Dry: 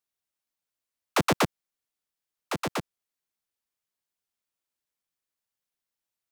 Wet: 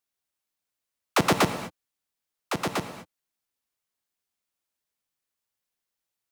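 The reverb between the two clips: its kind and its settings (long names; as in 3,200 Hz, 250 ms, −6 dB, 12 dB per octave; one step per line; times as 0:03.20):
reverb whose tail is shaped and stops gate 260 ms flat, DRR 9 dB
level +2 dB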